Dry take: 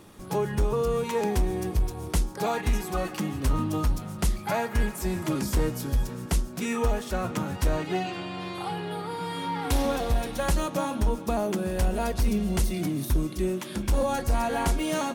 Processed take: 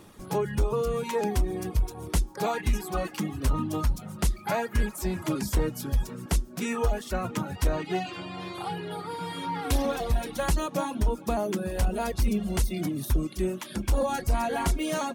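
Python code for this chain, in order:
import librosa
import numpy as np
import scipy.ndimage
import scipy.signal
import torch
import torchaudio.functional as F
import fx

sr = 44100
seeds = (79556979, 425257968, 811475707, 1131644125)

y = fx.dereverb_blind(x, sr, rt60_s=0.69)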